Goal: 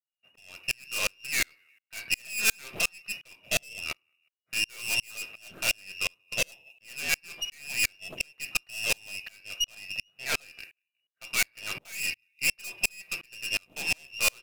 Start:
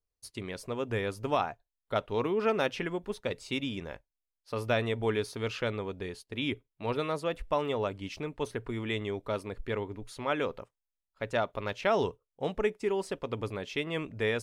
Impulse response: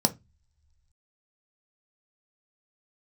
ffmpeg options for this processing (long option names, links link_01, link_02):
-filter_complex "[0:a]lowshelf=frequency=130:gain=-9,asplit=2[link_01][link_02];[link_02]adelay=181,lowpass=frequency=1000:poles=1,volume=-23.5dB,asplit=2[link_03][link_04];[link_04]adelay=181,lowpass=frequency=1000:poles=1,volume=0.2[link_05];[link_01][link_03][link_05]amix=inputs=3:normalize=0,lowpass=frequency=2500:width_type=q:width=0.5098,lowpass=frequency=2500:width_type=q:width=0.6013,lowpass=frequency=2500:width_type=q:width=0.9,lowpass=frequency=2500:width_type=q:width=2.563,afreqshift=-2900,asettb=1/sr,asplit=3[link_06][link_07][link_08];[link_06]atrim=end=9.644[link_09];[link_07]atrim=start=9.64:end=10.48,asetpts=PTS-STARTPTS,afade=type=in:duration=0.004:curve=qsin,afade=type=out:start_time=0.836:duration=0.004:curve=qsin,equalizer=frequency=1500:width=0.38:gain=-2.5[link_10];[link_08]atrim=start=10.476[link_11];[link_09][link_10]acrossfade=duration=0.004:curve1=hsin:curve2=qsin[link_12];[link_12][link_11]acrossfade=duration=0.004:curve1=qsin:curve2=hsin,acrusher=bits=6:mode=log:mix=0:aa=0.000001[link_13];[1:a]atrim=start_sample=2205,afade=type=out:start_time=0.16:duration=0.01,atrim=end_sample=7497,asetrate=29988,aresample=44100[link_14];[link_13][link_14]afir=irnorm=-1:irlink=0,aeval=exprs='(tanh(20*val(0)+0.75)-tanh(0.75))/20':channel_layout=same,crystalizer=i=5.5:c=0,aeval=exprs='val(0)*pow(10,-37*if(lt(mod(-2.8*n/s,1),2*abs(-2.8)/1000),1-mod(-2.8*n/s,1)/(2*abs(-2.8)/1000),(mod(-2.8*n/s,1)-2*abs(-2.8)/1000)/(1-2*abs(-2.8)/1000))/20)':channel_layout=same"